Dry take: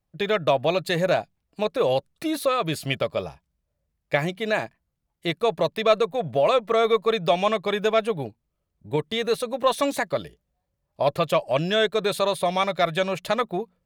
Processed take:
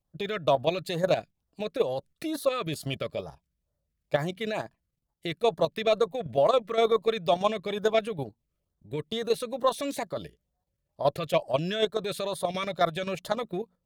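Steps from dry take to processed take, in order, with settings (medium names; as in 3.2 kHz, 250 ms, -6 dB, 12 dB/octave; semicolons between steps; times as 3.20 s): LFO notch sine 2.2 Hz 770–2600 Hz; level held to a coarse grid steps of 10 dB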